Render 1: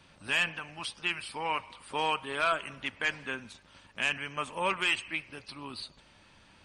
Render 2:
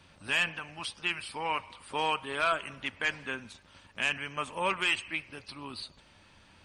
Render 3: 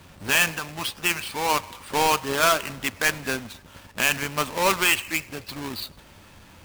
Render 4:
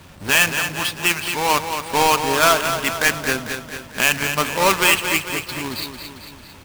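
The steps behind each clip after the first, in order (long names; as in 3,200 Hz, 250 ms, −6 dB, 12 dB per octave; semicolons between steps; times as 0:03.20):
parametric band 85 Hz +6.5 dB 0.23 octaves
each half-wave held at its own peak; level +5 dB
repeating echo 224 ms, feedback 56%, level −8 dB; level +4.5 dB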